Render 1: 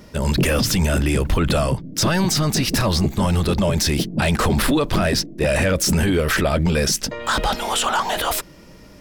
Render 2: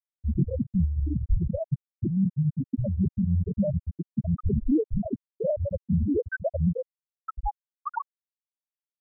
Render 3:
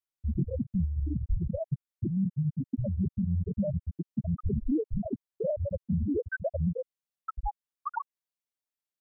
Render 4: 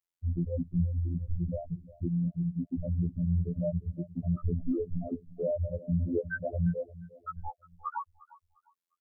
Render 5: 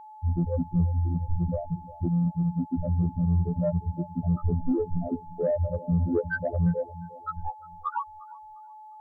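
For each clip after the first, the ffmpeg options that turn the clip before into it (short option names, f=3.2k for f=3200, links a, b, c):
-af "afftfilt=real='re*gte(hypot(re,im),0.891)':imag='im*gte(hypot(re,im),0.891)':win_size=1024:overlap=0.75,volume=-2.5dB"
-af "acompressor=threshold=-33dB:ratio=1.5"
-filter_complex "[0:a]afftfilt=real='hypot(re,im)*cos(PI*b)':imag='0':win_size=2048:overlap=0.75,asplit=2[a][b];[b]adelay=353,lowpass=f=1.2k:p=1,volume=-17.5dB,asplit=2[c][d];[d]adelay=353,lowpass=f=1.2k:p=1,volume=0.36,asplit=2[e][f];[f]adelay=353,lowpass=f=1.2k:p=1,volume=0.36[g];[a][c][e][g]amix=inputs=4:normalize=0,volume=2dB"
-af "aeval=exprs='val(0)+0.00355*sin(2*PI*860*n/s)':c=same,asoftclip=type=tanh:threshold=-19.5dB,volume=5.5dB"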